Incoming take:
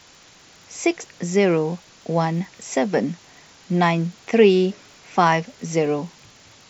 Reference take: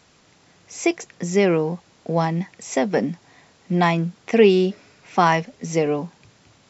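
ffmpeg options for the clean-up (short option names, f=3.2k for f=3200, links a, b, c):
-af "adeclick=t=4,afftdn=nr=6:nf=-50"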